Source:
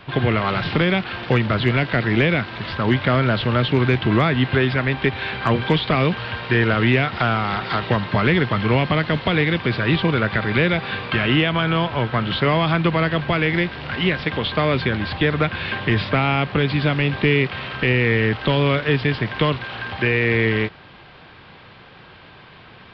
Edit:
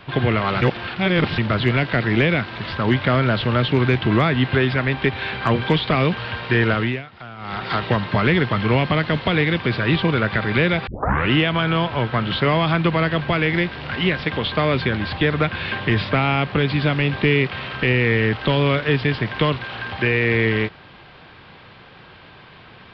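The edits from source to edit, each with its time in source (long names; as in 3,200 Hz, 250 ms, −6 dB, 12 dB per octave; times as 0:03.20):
0:00.62–0:01.38: reverse
0:06.71–0:07.69: duck −17.5 dB, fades 0.32 s
0:10.87: tape start 0.44 s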